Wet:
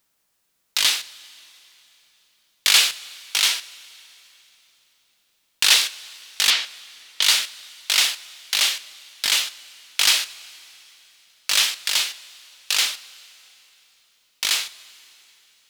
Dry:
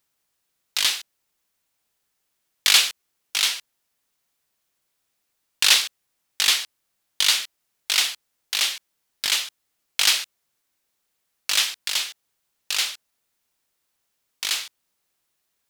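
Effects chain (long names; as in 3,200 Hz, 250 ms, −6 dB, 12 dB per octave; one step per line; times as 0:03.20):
0:06.50–0:07.22: low-pass filter 4,600 Hz
in parallel at +2.5 dB: brickwall limiter −13 dBFS, peak gain reduction 11 dB
on the sum: coupled-rooms reverb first 0.25 s, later 3.5 s, from −18 dB, DRR 11 dB
level −3 dB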